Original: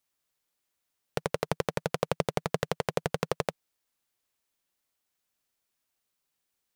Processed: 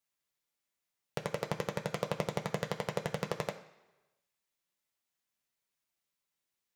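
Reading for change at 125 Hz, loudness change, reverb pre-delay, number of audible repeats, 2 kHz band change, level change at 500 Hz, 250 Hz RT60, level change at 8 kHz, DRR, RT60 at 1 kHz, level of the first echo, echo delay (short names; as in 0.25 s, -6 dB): -4.0 dB, -5.0 dB, 3 ms, none, -4.0 dB, -5.0 dB, 1.0 s, -5.0 dB, 2.0 dB, 1.1 s, none, none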